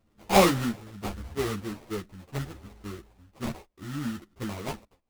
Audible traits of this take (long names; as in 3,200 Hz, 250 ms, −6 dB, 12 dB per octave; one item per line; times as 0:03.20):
phaser sweep stages 2, 0.74 Hz, lowest notch 560–1,600 Hz
aliases and images of a low sample rate 1,600 Hz, jitter 20%
tremolo triangle 0.74 Hz, depth 35%
a shimmering, thickened sound